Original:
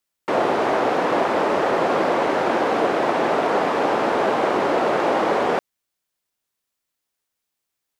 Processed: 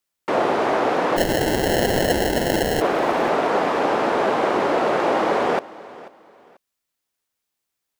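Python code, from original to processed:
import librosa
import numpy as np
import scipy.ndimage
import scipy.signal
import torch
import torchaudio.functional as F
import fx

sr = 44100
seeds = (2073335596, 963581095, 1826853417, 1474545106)

p1 = fx.sample_hold(x, sr, seeds[0], rate_hz=1200.0, jitter_pct=0, at=(1.16, 2.8), fade=0.02)
y = p1 + fx.echo_feedback(p1, sr, ms=489, feedback_pct=29, wet_db=-19.5, dry=0)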